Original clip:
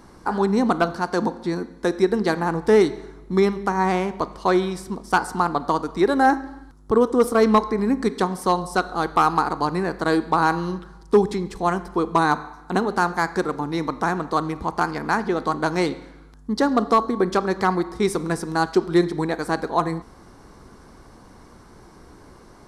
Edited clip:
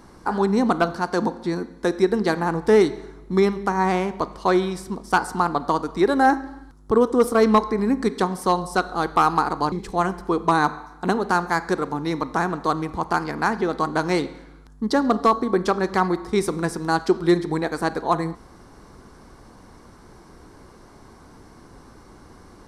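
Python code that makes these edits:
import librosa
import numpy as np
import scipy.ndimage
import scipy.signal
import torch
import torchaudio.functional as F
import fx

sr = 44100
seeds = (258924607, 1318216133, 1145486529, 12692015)

y = fx.edit(x, sr, fx.cut(start_s=9.72, length_s=1.67), tone=tone)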